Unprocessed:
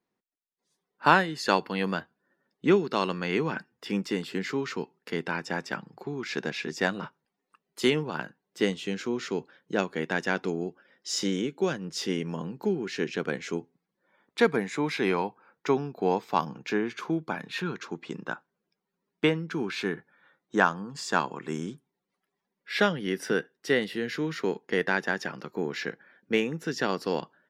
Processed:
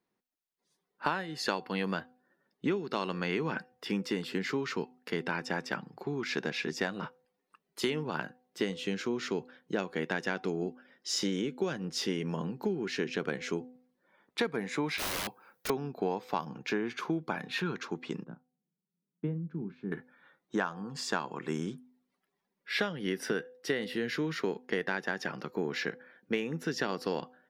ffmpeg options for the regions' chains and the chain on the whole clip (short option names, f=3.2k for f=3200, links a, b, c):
-filter_complex "[0:a]asettb=1/sr,asplit=3[a][b][c];[a]atrim=end=14.984[d];[b]atrim=start=14.98:end=15.7,asetpts=PTS-STARTPTS,afade=t=in:d=0.004:c=qsin,afade=t=out:st=0.716:d=0.004:c=qsin,aemphasis=mode=production:type=75fm,aeval=exprs='(mod(28.2*val(0)+1,2)-1)/28.2':c=same[e];[c]atrim=start=15.696[f];[d][e]acrossfade=d=0.004:c1=hsin:c2=qsin[g];[g][f]acrossfade=d=0.004:c1=qsin:c2=hsin,asettb=1/sr,asplit=3[h][i][j];[h]atrim=end=18.244[k];[i]atrim=start=18.24:end=19.92,asetpts=PTS-STARTPTS,afade=t=in:d=0.004:c=qsin,afade=t=out:st=1.676:d=0.004:c=qsin,bandpass=f=160:t=q:w=2,asplit=2[l][m];[m]adelay=34,volume=-12.5dB[n];[l][n]amix=inputs=2:normalize=0,atrim=end_sample=74088[o];[j]atrim=start=19.916[p];[k][o]acrossfade=d=0.004:c1=hsin:c2=qsin[q];[q][p]acrossfade=d=0.004:c1=qsin:c2=hsin,equalizer=f=7.4k:t=o:w=0.41:g=-3.5,bandreject=f=251.1:t=h:w=4,bandreject=f=502.2:t=h:w=4,bandreject=f=753.3:t=h:w=4,acompressor=threshold=-27dB:ratio=8"